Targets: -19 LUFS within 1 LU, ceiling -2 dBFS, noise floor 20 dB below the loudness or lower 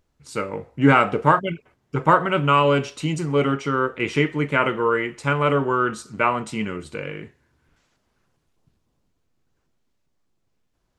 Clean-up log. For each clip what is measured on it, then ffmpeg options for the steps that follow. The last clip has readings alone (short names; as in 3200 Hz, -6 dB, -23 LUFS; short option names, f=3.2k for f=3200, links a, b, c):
loudness -21.0 LUFS; peak -2.0 dBFS; loudness target -19.0 LUFS
-> -af "volume=2dB,alimiter=limit=-2dB:level=0:latency=1"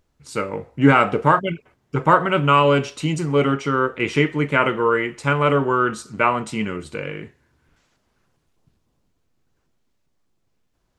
loudness -19.5 LUFS; peak -2.0 dBFS; noise floor -69 dBFS